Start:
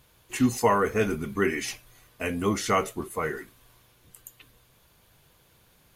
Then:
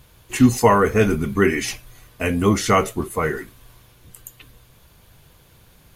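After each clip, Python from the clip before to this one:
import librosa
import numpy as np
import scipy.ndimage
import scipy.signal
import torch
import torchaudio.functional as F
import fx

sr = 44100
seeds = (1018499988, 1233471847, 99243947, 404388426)

y = fx.low_shelf(x, sr, hz=160.0, db=7.5)
y = F.gain(torch.from_numpy(y), 6.5).numpy()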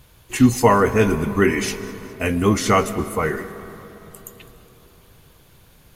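y = fx.echo_feedback(x, sr, ms=207, feedback_pct=56, wet_db=-21.0)
y = fx.rev_freeverb(y, sr, rt60_s=4.1, hf_ratio=0.4, predelay_ms=85, drr_db=14.5)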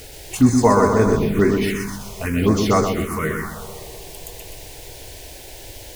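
y = fx.dmg_noise_colour(x, sr, seeds[0], colour='pink', level_db=-37.0)
y = fx.echo_feedback(y, sr, ms=126, feedback_pct=54, wet_db=-5)
y = fx.env_phaser(y, sr, low_hz=160.0, high_hz=2900.0, full_db=-11.0)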